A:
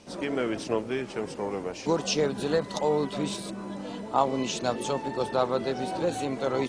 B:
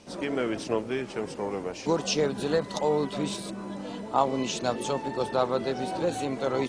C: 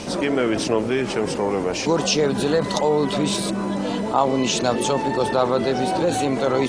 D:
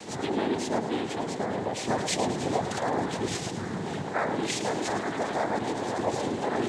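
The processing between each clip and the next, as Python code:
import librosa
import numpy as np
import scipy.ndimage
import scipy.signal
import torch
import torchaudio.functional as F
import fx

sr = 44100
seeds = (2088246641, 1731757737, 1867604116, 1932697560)

y1 = x
y2 = fx.env_flatten(y1, sr, amount_pct=50)
y2 = y2 * librosa.db_to_amplitude(4.0)
y3 = fx.noise_vocoder(y2, sr, seeds[0], bands=6)
y3 = fx.echo_feedback(y3, sr, ms=108, feedback_pct=51, wet_db=-10.0)
y3 = y3 * librosa.db_to_amplitude(-8.5)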